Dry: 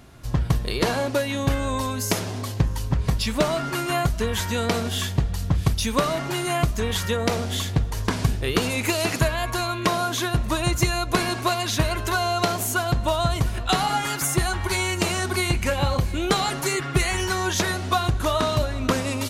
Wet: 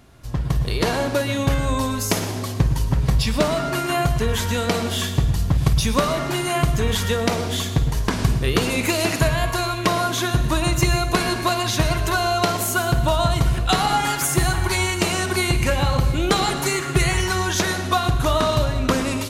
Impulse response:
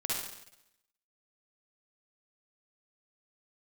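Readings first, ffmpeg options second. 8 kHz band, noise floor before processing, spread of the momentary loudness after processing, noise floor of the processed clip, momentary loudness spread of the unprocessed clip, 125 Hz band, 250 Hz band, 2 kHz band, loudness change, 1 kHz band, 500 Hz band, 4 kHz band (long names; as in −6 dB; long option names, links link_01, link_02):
+2.5 dB, −30 dBFS, 3 LU, −27 dBFS, 3 LU, +3.5 dB, +3.0 dB, +2.5 dB, +3.0 dB, +2.5 dB, +2.5 dB, +2.5 dB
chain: -filter_complex "[0:a]asplit=2[link_01][link_02];[1:a]atrim=start_sample=2205,lowshelf=frequency=160:gain=10,adelay=53[link_03];[link_02][link_03]afir=irnorm=-1:irlink=0,volume=-14dB[link_04];[link_01][link_04]amix=inputs=2:normalize=0,dynaudnorm=framelen=480:gausssize=3:maxgain=6dB,volume=-2.5dB"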